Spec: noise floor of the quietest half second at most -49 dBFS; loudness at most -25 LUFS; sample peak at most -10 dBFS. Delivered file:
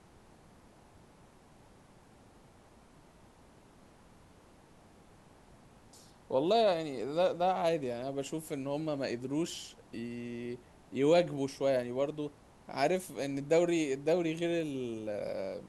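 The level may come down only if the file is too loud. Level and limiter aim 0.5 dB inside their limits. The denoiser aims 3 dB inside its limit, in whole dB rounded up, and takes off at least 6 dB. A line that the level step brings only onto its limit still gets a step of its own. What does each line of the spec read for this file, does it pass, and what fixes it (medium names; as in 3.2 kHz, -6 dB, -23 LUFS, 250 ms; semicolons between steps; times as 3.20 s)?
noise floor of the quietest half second -59 dBFS: pass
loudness -33.0 LUFS: pass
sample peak -14.5 dBFS: pass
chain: none needed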